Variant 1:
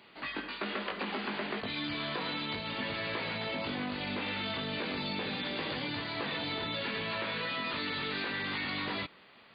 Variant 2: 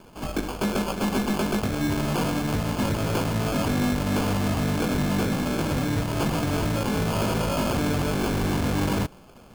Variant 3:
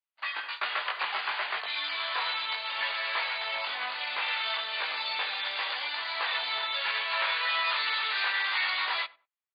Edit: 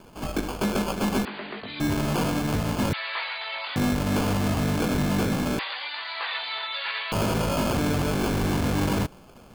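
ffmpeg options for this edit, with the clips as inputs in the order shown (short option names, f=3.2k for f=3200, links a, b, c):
-filter_complex "[2:a]asplit=2[a][b];[1:a]asplit=4[c][d][e][f];[c]atrim=end=1.252[g];[0:a]atrim=start=1.248:end=1.802[h];[d]atrim=start=1.798:end=2.932[i];[a]atrim=start=2.928:end=3.762[j];[e]atrim=start=3.758:end=5.592[k];[b]atrim=start=5.588:end=7.122[l];[f]atrim=start=7.118[m];[g][h]acrossfade=d=0.004:c1=hsin:c2=hsin[n];[n][i]acrossfade=d=0.004:c1=hsin:c2=hsin[o];[o][j]acrossfade=d=0.004:c1=hsin:c2=hsin[p];[p][k]acrossfade=d=0.004:c1=hsin:c2=hsin[q];[q][l]acrossfade=d=0.004:c1=hsin:c2=hsin[r];[r][m]acrossfade=d=0.004:c1=hsin:c2=hsin"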